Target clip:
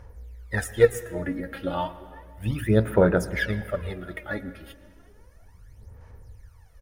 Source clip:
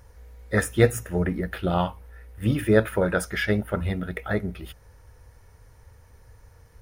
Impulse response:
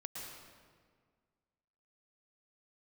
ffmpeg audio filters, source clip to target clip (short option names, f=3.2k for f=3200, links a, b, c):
-filter_complex "[0:a]asplit=2[a][b];[b]adelay=368,lowpass=f=2k:p=1,volume=-24dB,asplit=2[c][d];[d]adelay=368,lowpass=f=2k:p=1,volume=0.55,asplit=2[e][f];[f]adelay=368,lowpass=f=2k:p=1,volume=0.55,asplit=2[g][h];[h]adelay=368,lowpass=f=2k:p=1,volume=0.55[i];[a][c][e][g][i]amix=inputs=5:normalize=0,aphaser=in_gain=1:out_gain=1:delay=3.7:decay=0.73:speed=0.33:type=sinusoidal,asplit=2[j][k];[1:a]atrim=start_sample=2205,highshelf=f=10k:g=-11.5[l];[k][l]afir=irnorm=-1:irlink=0,volume=-10.5dB[m];[j][m]amix=inputs=2:normalize=0,volume=-7.5dB"